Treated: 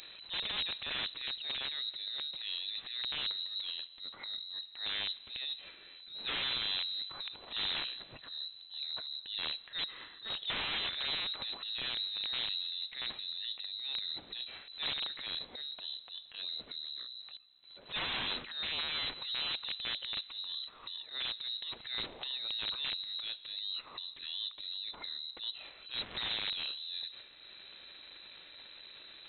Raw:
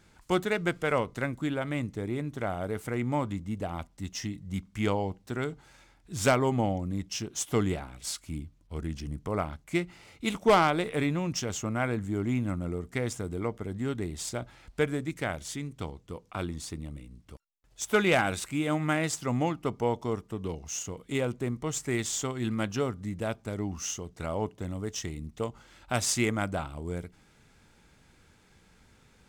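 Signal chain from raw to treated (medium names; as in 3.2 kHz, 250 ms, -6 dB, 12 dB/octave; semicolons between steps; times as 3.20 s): upward compressor, threshold -31 dBFS; transient shaper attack -9 dB, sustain +11 dB; integer overflow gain 21.5 dB; on a send at -22 dB: reverberation RT60 2.5 s, pre-delay 95 ms; on the sum: frequency inversion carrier 4 kHz; trim -8 dB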